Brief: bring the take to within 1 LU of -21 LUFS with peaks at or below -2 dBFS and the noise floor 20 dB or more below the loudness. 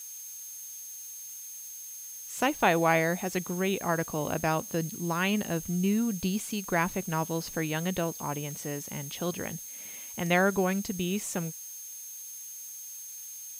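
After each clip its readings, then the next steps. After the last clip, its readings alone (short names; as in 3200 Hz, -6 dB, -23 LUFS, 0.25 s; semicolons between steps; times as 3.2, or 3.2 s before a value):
steady tone 6400 Hz; tone level -42 dBFS; noise floor -43 dBFS; noise floor target -51 dBFS; loudness -31.0 LUFS; peak -11.0 dBFS; loudness target -21.0 LUFS
-> notch 6400 Hz, Q 30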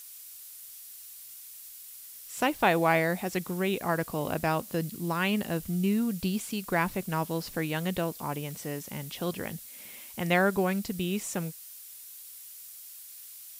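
steady tone none; noise floor -47 dBFS; noise floor target -50 dBFS
-> denoiser 6 dB, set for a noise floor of -47 dBFS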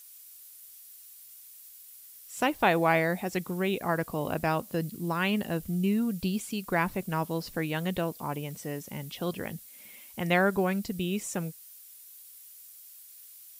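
noise floor -51 dBFS; loudness -30.0 LUFS; peak -11.5 dBFS; loudness target -21.0 LUFS
-> gain +9 dB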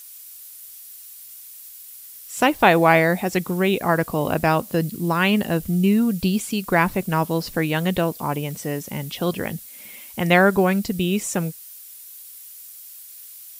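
loudness -21.0 LUFS; peak -2.5 dBFS; noise floor -42 dBFS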